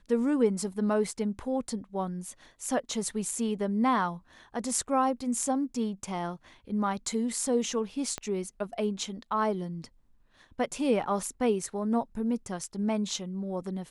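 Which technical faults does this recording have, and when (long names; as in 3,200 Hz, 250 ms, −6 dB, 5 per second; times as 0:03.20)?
0:08.18: click −19 dBFS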